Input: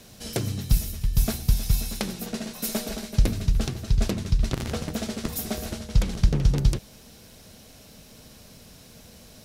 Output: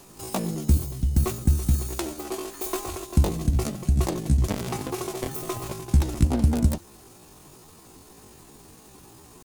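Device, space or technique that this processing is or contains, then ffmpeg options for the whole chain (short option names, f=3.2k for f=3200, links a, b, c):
chipmunk voice: -filter_complex "[0:a]asplit=3[a][b][c];[a]afade=t=out:st=3.08:d=0.02[d];[b]asplit=2[e][f];[f]adelay=33,volume=-13dB[g];[e][g]amix=inputs=2:normalize=0,afade=t=in:st=3.08:d=0.02,afade=t=out:st=3.54:d=0.02[h];[c]afade=t=in:st=3.54:d=0.02[i];[d][h][i]amix=inputs=3:normalize=0,asetrate=74167,aresample=44100,atempo=0.594604"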